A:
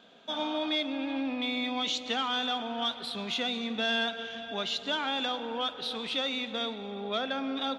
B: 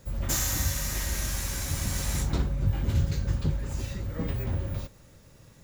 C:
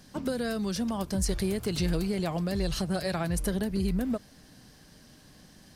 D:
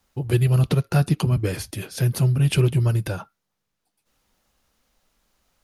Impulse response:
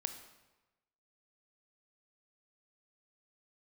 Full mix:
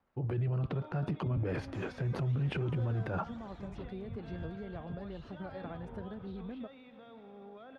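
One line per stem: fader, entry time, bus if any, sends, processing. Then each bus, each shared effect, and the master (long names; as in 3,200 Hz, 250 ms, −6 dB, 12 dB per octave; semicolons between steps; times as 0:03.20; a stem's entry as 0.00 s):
−11.5 dB, 0.45 s, no send, brickwall limiter −30 dBFS, peak gain reduction 11 dB
−13.0 dB, 1.45 s, no send, reverb reduction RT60 1.9 s
−12.5 dB, 2.50 s, no send, no processing
−4.5 dB, 0.00 s, no send, transient designer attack −2 dB, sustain +12 dB; downward compressor, threshold −18 dBFS, peak gain reduction 5 dB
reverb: not used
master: low-pass filter 1,500 Hz 12 dB per octave; low-shelf EQ 80 Hz −11.5 dB; brickwall limiter −26 dBFS, peak gain reduction 10.5 dB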